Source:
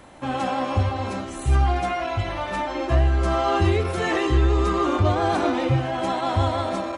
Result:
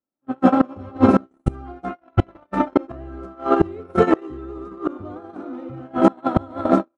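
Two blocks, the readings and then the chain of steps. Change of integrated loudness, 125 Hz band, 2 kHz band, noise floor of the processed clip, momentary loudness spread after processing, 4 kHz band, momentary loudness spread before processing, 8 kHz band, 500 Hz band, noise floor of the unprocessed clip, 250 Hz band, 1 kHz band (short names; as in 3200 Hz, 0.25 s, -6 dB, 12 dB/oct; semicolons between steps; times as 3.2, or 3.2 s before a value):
+2.0 dB, -6.0 dB, -5.5 dB, -69 dBFS, 17 LU, -11.5 dB, 7 LU, under -10 dB, +2.0 dB, -33 dBFS, +6.5 dB, -1.0 dB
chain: AGC gain up to 9.5 dB; small resonant body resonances 230/1300 Hz, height 13 dB, ringing for 20 ms; limiter -4.5 dBFS, peak gain reduction 7.5 dB; tilt shelf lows +8.5 dB, about 1200 Hz; gate -5 dBFS, range -59 dB; tone controls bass -11 dB, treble -1 dB; flipped gate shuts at -7 dBFS, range -28 dB; gain +5 dB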